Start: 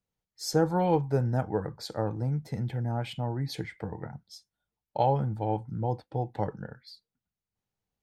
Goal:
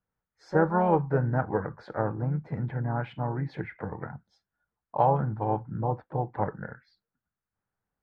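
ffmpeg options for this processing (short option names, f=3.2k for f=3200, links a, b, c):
-filter_complex "[0:a]asplit=2[a][b];[b]asetrate=52444,aresample=44100,atempo=0.840896,volume=-10dB[c];[a][c]amix=inputs=2:normalize=0,lowpass=f=1.5k:t=q:w=2.5"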